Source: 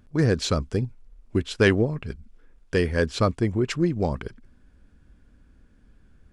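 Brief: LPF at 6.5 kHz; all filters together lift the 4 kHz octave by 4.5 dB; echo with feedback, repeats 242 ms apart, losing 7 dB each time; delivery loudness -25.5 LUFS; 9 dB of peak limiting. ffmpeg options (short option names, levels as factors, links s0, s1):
-af "lowpass=6500,equalizer=f=4000:t=o:g=6,alimiter=limit=0.168:level=0:latency=1,aecho=1:1:242|484|726|968|1210:0.447|0.201|0.0905|0.0407|0.0183,volume=1.19"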